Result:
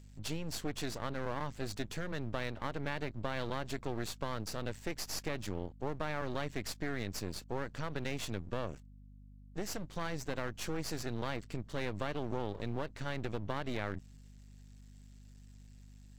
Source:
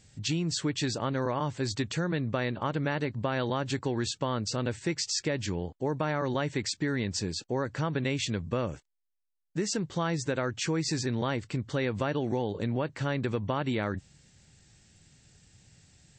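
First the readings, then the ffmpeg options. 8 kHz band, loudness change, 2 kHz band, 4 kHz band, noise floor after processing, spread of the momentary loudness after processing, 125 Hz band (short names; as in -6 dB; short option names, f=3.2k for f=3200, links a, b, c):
-9.5 dB, -8.5 dB, -6.5 dB, -9.0 dB, -55 dBFS, 19 LU, -9.5 dB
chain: -af "aeval=exprs='max(val(0),0)':c=same,aeval=exprs='val(0)+0.00355*(sin(2*PI*50*n/s)+sin(2*PI*2*50*n/s)/2+sin(2*PI*3*50*n/s)/3+sin(2*PI*4*50*n/s)/4+sin(2*PI*5*50*n/s)/5)':c=same,volume=-4.5dB"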